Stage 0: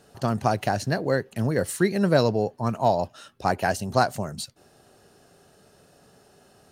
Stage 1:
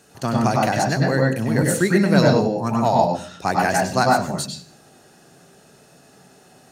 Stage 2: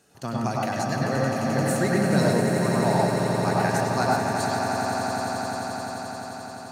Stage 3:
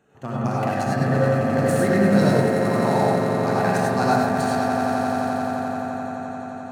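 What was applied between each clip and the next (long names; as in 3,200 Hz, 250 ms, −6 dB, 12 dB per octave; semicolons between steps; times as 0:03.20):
convolution reverb RT60 0.45 s, pre-delay 96 ms, DRR 0 dB; level +5.5 dB
echo that builds up and dies away 87 ms, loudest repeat 8, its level −9.5 dB; level −8 dB
adaptive Wiener filter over 9 samples; reverb whose tail is shaped and stops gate 120 ms rising, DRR −0.5 dB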